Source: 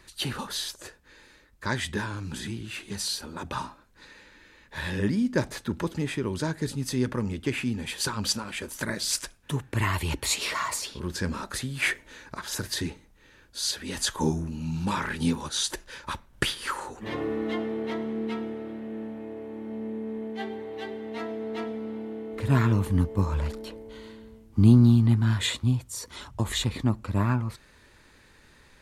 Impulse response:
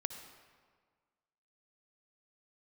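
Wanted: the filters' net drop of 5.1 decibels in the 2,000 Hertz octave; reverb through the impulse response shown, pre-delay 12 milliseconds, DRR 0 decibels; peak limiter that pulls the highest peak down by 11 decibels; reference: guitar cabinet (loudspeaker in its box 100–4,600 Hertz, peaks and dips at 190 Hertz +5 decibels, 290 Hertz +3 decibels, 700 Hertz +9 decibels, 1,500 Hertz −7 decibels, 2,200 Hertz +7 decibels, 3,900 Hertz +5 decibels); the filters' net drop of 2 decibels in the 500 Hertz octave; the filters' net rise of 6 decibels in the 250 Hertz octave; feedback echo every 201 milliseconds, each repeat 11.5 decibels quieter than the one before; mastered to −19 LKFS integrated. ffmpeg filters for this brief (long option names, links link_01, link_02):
-filter_complex "[0:a]equalizer=frequency=250:width_type=o:gain=5.5,equalizer=frequency=500:width_type=o:gain=-7,equalizer=frequency=2000:width_type=o:gain=-8,alimiter=limit=-15.5dB:level=0:latency=1,aecho=1:1:201|402|603:0.266|0.0718|0.0194,asplit=2[link_01][link_02];[1:a]atrim=start_sample=2205,adelay=12[link_03];[link_02][link_03]afir=irnorm=-1:irlink=0,volume=0dB[link_04];[link_01][link_04]amix=inputs=2:normalize=0,highpass=100,equalizer=frequency=190:width_type=q:width=4:gain=5,equalizer=frequency=290:width_type=q:width=4:gain=3,equalizer=frequency=700:width_type=q:width=4:gain=9,equalizer=frequency=1500:width_type=q:width=4:gain=-7,equalizer=frequency=2200:width_type=q:width=4:gain=7,equalizer=frequency=3900:width_type=q:width=4:gain=5,lowpass=frequency=4600:width=0.5412,lowpass=frequency=4600:width=1.3066,volume=6.5dB"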